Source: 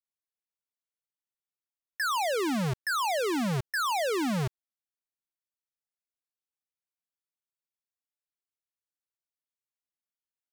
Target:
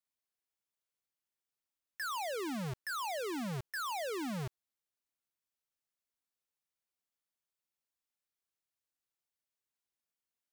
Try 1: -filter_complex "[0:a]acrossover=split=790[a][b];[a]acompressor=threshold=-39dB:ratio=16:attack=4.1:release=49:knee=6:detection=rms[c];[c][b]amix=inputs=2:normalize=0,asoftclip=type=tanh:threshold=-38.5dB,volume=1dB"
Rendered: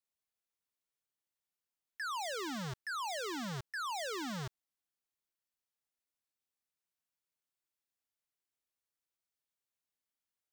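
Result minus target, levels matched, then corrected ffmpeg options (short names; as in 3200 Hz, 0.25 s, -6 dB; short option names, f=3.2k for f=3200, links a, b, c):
compressor: peak gain reduction +11 dB
-af "asoftclip=type=tanh:threshold=-38.5dB,volume=1dB"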